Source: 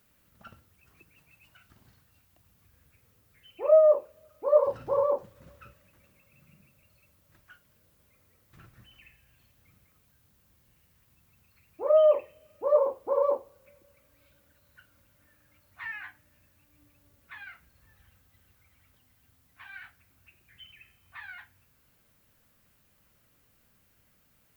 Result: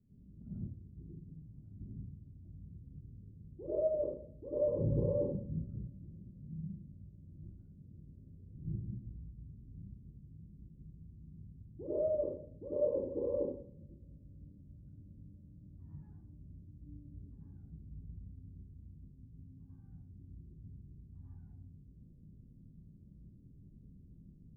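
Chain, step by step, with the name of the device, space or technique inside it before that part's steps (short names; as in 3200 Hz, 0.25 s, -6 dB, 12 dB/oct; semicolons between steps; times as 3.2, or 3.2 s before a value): next room (LPF 280 Hz 24 dB/oct; reverb RT60 0.50 s, pre-delay 81 ms, DRR -9 dB); gain +4.5 dB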